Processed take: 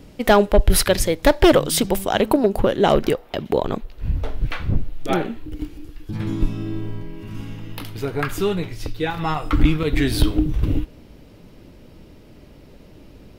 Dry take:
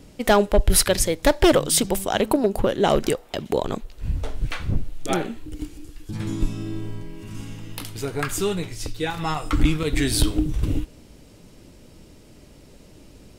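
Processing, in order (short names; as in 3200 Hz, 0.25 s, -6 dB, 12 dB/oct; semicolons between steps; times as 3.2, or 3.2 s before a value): bell 8000 Hz -7 dB 1.2 oct, from 2.94 s -13.5 dB; gain +3 dB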